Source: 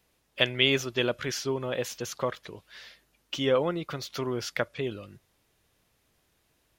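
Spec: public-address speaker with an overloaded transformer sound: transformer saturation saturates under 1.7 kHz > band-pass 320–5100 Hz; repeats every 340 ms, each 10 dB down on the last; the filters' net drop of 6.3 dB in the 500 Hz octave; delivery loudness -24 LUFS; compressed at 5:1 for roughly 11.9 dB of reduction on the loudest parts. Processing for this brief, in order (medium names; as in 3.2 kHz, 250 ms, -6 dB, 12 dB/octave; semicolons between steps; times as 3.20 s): peaking EQ 500 Hz -6.5 dB; compression 5:1, threshold -32 dBFS; feedback delay 340 ms, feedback 32%, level -10 dB; transformer saturation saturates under 1.7 kHz; band-pass 320–5100 Hz; trim +17 dB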